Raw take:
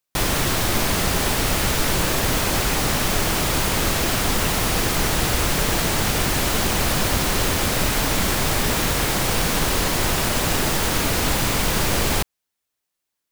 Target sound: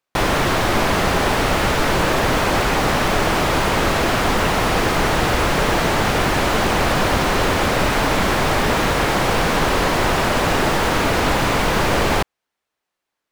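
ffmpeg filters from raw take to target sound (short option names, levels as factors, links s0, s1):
-filter_complex "[0:a]asplit=2[s0][s1];[s1]highpass=f=720:p=1,volume=3.16,asoftclip=type=tanh:threshold=0.447[s2];[s0][s2]amix=inputs=2:normalize=0,lowpass=f=1000:p=1,volume=0.501,volume=2.11"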